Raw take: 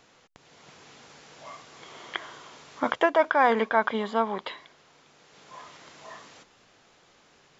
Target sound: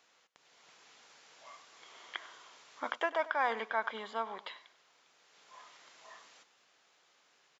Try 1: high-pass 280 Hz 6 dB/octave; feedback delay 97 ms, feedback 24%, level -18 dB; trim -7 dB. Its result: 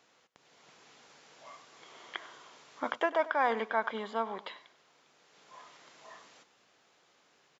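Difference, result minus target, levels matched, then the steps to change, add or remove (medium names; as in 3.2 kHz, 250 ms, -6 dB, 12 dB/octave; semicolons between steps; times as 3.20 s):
250 Hz band +5.5 dB
change: high-pass 960 Hz 6 dB/octave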